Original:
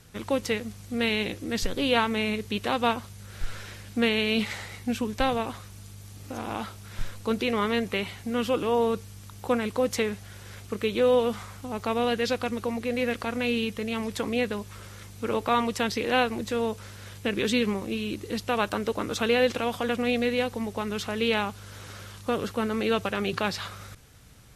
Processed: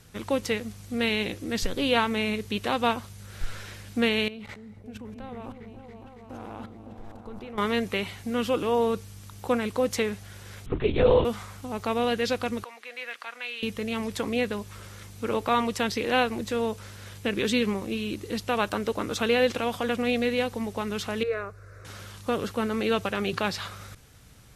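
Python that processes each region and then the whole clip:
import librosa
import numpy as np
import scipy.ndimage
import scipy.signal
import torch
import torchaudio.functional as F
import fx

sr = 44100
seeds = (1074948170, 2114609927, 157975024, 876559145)

y = fx.chain(x, sr, fx.high_shelf(hz=2300.0, db=-12.0),
    fx.level_steps(step_db=20),
    fx.echo_opening(ms=279, hz=400, octaves=1, feedback_pct=70, wet_db=-3), at=(4.28, 7.58))
y = fx.chain(y, sr, fx.low_shelf(hz=170.0, db=11.5),
    fx.lpc_vocoder(seeds[0], excitation='whisper', order=10), at=(10.66, 11.25))
y = fx.chain(y, sr, fx.highpass(hz=1300.0, slope=12),
    fx.high_shelf(hz=4100.0, db=-11.0), at=(12.64, 13.63))
y = fx.chain(y, sr, fx.lowpass(hz=1400.0, slope=6),
    fx.fixed_phaser(hz=860.0, stages=6), at=(21.23, 21.85))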